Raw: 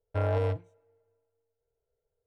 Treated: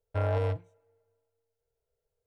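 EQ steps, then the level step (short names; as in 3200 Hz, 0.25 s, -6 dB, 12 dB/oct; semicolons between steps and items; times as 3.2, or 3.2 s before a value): bell 340 Hz -3.5 dB 0.91 oct; 0.0 dB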